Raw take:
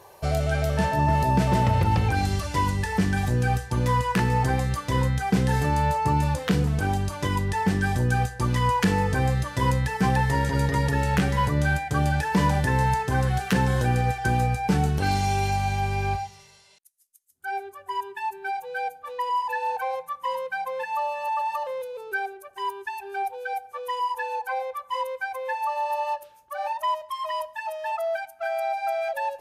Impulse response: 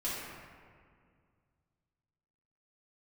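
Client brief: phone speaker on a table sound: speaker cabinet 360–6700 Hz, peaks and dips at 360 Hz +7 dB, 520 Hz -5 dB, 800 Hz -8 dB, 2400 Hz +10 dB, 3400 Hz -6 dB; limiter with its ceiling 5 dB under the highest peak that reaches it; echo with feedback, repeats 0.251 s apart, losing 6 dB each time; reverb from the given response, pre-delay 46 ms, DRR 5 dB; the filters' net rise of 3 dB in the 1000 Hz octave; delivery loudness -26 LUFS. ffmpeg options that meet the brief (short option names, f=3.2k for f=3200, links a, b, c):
-filter_complex "[0:a]equalizer=f=1k:t=o:g=8,alimiter=limit=-12.5dB:level=0:latency=1,aecho=1:1:251|502|753|1004|1255|1506:0.501|0.251|0.125|0.0626|0.0313|0.0157,asplit=2[a][b];[1:a]atrim=start_sample=2205,adelay=46[c];[b][c]afir=irnorm=-1:irlink=0,volume=-10dB[d];[a][d]amix=inputs=2:normalize=0,highpass=f=360:w=0.5412,highpass=f=360:w=1.3066,equalizer=f=360:t=q:w=4:g=7,equalizer=f=520:t=q:w=4:g=-5,equalizer=f=800:t=q:w=4:g=-8,equalizer=f=2.4k:t=q:w=4:g=10,equalizer=f=3.4k:t=q:w=4:g=-6,lowpass=f=6.7k:w=0.5412,lowpass=f=6.7k:w=1.3066,volume=-2dB"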